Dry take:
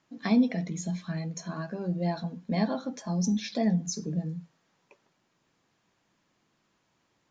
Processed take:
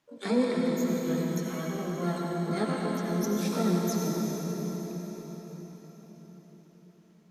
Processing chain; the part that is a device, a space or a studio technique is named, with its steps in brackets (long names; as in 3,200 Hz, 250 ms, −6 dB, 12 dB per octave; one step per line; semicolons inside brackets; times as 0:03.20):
shimmer-style reverb (pitch-shifted copies added +12 semitones −4 dB; convolution reverb RT60 5.1 s, pre-delay 71 ms, DRR −2 dB)
level −5 dB